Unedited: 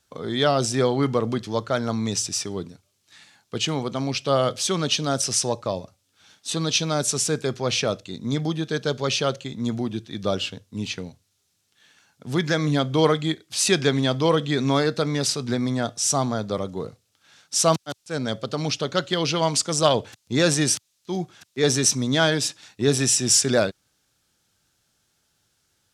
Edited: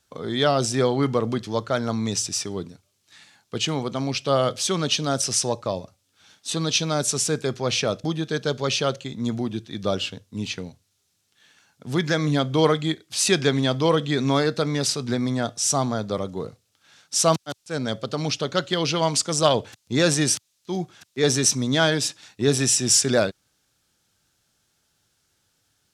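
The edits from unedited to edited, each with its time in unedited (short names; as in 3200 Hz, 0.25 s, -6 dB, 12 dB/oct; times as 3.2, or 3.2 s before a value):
8.04–8.44 cut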